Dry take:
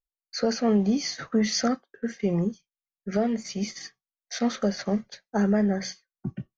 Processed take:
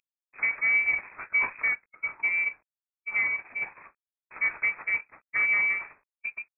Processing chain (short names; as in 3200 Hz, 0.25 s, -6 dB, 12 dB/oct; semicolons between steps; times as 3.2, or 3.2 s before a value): CVSD 16 kbps; formant shift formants -5 st; inverted band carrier 2500 Hz; gain -1.5 dB